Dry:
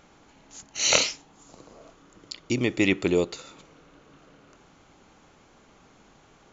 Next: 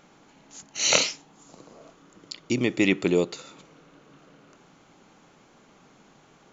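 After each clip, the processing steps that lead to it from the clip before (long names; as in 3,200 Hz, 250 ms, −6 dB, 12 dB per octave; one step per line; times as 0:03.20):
low shelf with overshoot 110 Hz −8 dB, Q 1.5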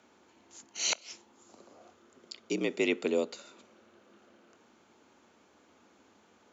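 frequency shifter +63 Hz
gate with flip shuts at −7 dBFS, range −28 dB
level −7 dB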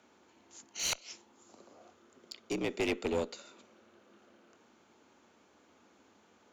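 asymmetric clip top −30.5 dBFS
level −1.5 dB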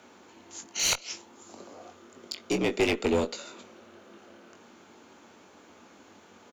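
in parallel at −2.5 dB: downward compressor, threshold −40 dBFS, peak gain reduction 12.5 dB
on the sum: double-tracking delay 21 ms −7.5 dB
level +5 dB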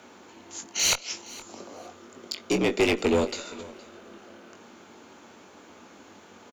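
in parallel at −5 dB: soft clipping −23 dBFS, distortion −12 dB
on the sum: repeating echo 467 ms, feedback 21%, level −20 dB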